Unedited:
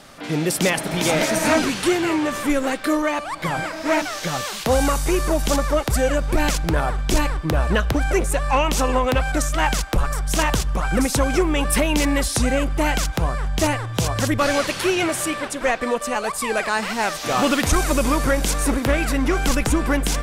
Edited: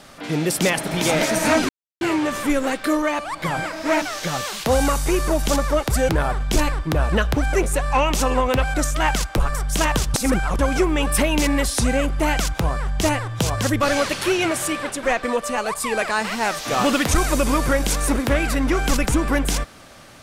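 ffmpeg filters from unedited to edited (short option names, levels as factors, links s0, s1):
-filter_complex "[0:a]asplit=6[s0][s1][s2][s3][s4][s5];[s0]atrim=end=1.69,asetpts=PTS-STARTPTS,afade=t=out:st=1.686:d=0.004:c=hsin[s6];[s1]atrim=start=1.69:end=2.01,asetpts=PTS-STARTPTS,volume=0[s7];[s2]atrim=start=2.01:end=6.092,asetpts=PTS-STARTPTS,afade=t=in:d=0.004:c=hsin[s8];[s3]atrim=start=6.668:end=10.722[s9];[s4]atrim=start=10.718:end=11.172,asetpts=PTS-STARTPTS,areverse[s10];[s5]atrim=start=11.168[s11];[s6][s7][s8]concat=n=3:v=0:a=1[s12];[s12][s9]acrossfade=d=0.004:c1=hsin:c2=hsin[s13];[s13][s10]acrossfade=d=0.004:c1=hsin:c2=hsin[s14];[s14][s11]acrossfade=d=0.004:c1=hsin:c2=hsin"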